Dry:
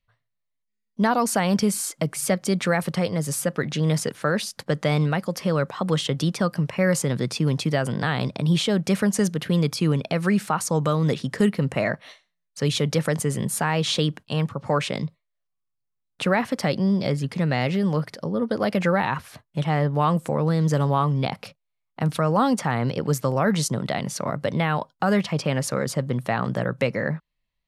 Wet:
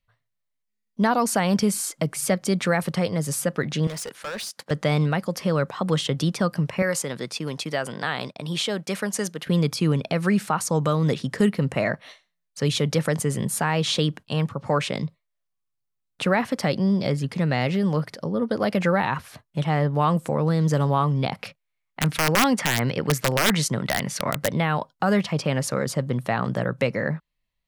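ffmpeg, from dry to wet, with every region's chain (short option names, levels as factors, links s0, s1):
-filter_complex "[0:a]asettb=1/sr,asplit=3[s0][s1][s2];[s0]atrim=end=3.874[s3];[s1]atrim=start=3.87:end=4.71,asetpts=PTS-STARTPTS,afade=t=in:d=0.004:c=qsin,afade=t=out:st=0.836:d=0.004:c=qsin,highpass=f=640:p=1,asoftclip=type=hard:threshold=0.0355[s4];[s2]atrim=start=4.706[s5];[s3][s4]acrossfade=d=0.004:c1=hsin:c2=qsin[s6];[s6][s5]acrossfade=d=0.004:c1=qsin:c2=hsin,asettb=1/sr,asplit=3[s7][s8][s9];[s7]atrim=end=6.824[s10];[s8]atrim=start=6.82:end=9.47,asetpts=PTS-STARTPTS,afade=t=in:d=0.004:c=qsin,afade=t=out:st=2.646:d=0.004:c=qsin,agate=range=0.0224:threshold=0.0316:ratio=3:release=100:detection=peak,highpass=f=510:p=1[s11];[s9]atrim=start=9.466[s12];[s10][s11]acrossfade=d=0.004:c1=hsin:c2=qsin[s13];[s13][s12]acrossfade=d=0.004:c1=qsin:c2=hsin,asettb=1/sr,asplit=3[s14][s15][s16];[s14]atrim=end=21.394[s17];[s15]atrim=start=21.39:end=24.48,asetpts=PTS-STARTPTS,afade=t=in:d=0.004:c=qsin,afade=t=out:st=3.086:d=0.004:c=qsin,equalizer=f=2000:w=1.2:g=7.5,aeval=exprs='(mod(3.55*val(0)+1,2)-1)/3.55':c=same[s18];[s16]atrim=start=24.476[s19];[s17][s18]acrossfade=d=0.004:c1=hsin:c2=qsin[s20];[s20][s19]acrossfade=d=0.004:c1=qsin:c2=hsin"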